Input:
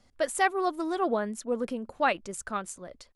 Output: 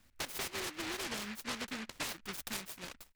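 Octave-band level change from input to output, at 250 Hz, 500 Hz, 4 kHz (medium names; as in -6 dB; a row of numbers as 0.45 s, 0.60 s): -12.0 dB, -18.0 dB, +2.0 dB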